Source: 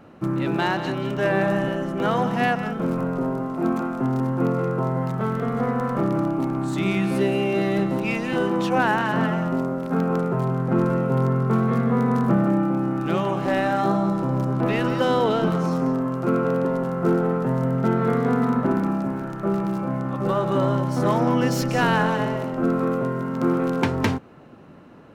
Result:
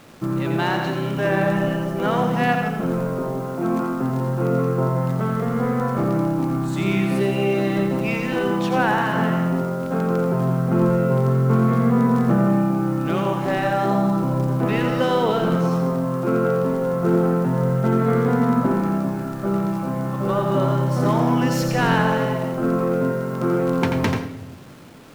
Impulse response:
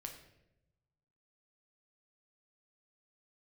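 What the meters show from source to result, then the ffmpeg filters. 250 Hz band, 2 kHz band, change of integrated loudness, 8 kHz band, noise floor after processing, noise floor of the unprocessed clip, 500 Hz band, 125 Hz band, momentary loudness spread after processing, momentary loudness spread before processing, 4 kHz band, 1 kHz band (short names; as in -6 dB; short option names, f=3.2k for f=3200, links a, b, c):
+1.5 dB, +1.0 dB, +2.0 dB, n/a, -28 dBFS, -31 dBFS, +2.0 dB, +3.5 dB, 5 LU, 5 LU, +1.5 dB, +1.0 dB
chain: -filter_complex "[0:a]acrusher=bits=7:mix=0:aa=0.000001,asplit=2[a][b];[1:a]atrim=start_sample=2205,adelay=86[c];[b][c]afir=irnorm=-1:irlink=0,volume=-1dB[d];[a][d]amix=inputs=2:normalize=0"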